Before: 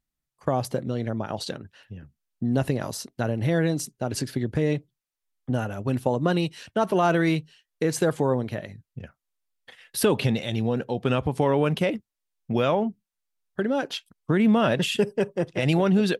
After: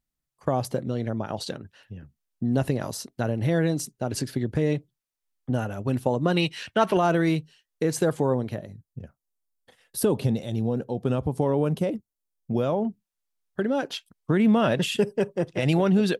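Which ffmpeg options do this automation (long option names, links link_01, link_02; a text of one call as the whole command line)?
ffmpeg -i in.wav -af "asetnsamples=nb_out_samples=441:pad=0,asendcmd='6.37 equalizer g 8;6.97 equalizer g -3.5;8.56 equalizer g -13.5;12.85 equalizer g -2',equalizer=frequency=2300:width_type=o:width=2.1:gain=-2" out.wav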